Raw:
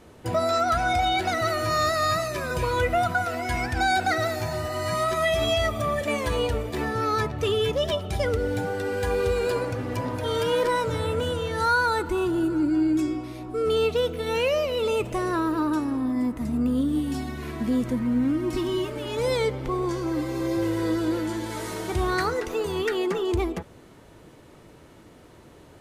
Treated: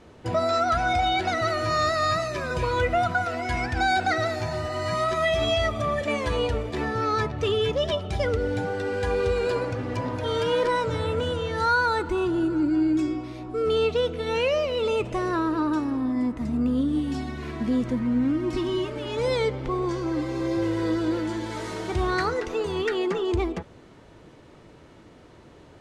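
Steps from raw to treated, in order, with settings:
low-pass filter 6,300 Hz 12 dB per octave

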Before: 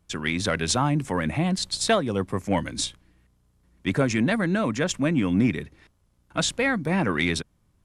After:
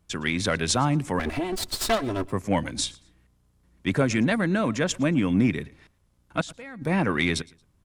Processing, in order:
0:01.19–0:02.32: lower of the sound and its delayed copy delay 3 ms
0:06.41–0:06.82: output level in coarse steps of 20 dB
on a send: repeating echo 113 ms, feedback 26%, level −23.5 dB

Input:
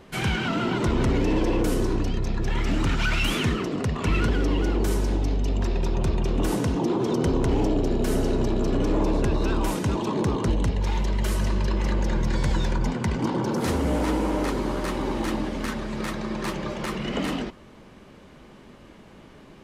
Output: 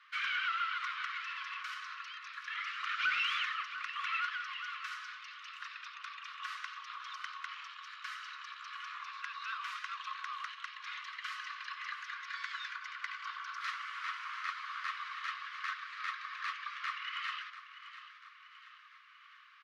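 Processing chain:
Chebyshev high-pass filter 1,100 Hz, order 8
soft clipping −17.5 dBFS, distortion −29 dB
high-frequency loss of the air 260 metres
repeating echo 691 ms, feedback 51%, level −13 dB

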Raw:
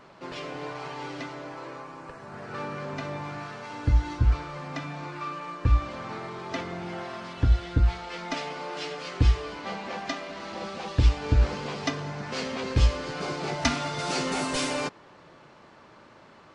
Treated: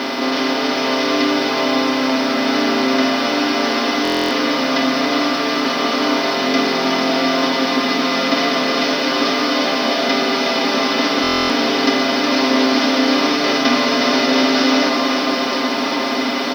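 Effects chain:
compressor on every frequency bin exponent 0.2
Chebyshev band-pass filter 200–5,500 Hz, order 5
in parallel at −11 dB: bit-depth reduction 6 bits, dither none
on the sum: comb filter 7.4 ms, depth 75%
on a send: delay that swaps between a low-pass and a high-pass 183 ms, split 1,100 Hz, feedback 86%, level −4.5 dB
on the sum: buffer that repeats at 0:04.03/0:11.22, samples 1,024, times 11

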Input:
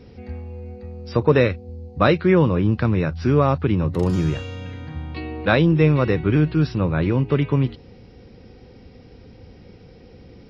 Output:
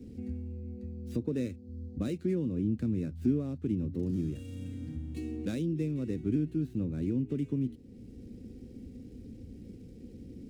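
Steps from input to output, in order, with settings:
running median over 9 samples
downward compressor 2.5 to 1, threshold −39 dBFS, peak gain reduction 18.5 dB
drawn EQ curve 160 Hz 0 dB, 250 Hz +10 dB, 1,000 Hz −21 dB, 1,700 Hz −12 dB, 6,300 Hz +1 dB
multiband upward and downward expander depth 40%

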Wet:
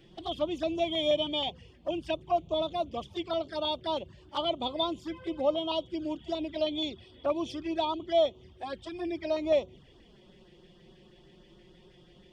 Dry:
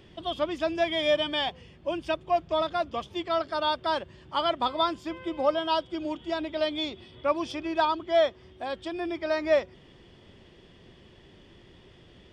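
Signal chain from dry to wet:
auto-filter notch saw up 6.3 Hz 920–2,600 Hz
flanger swept by the level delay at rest 7 ms, full sweep at −27.5 dBFS

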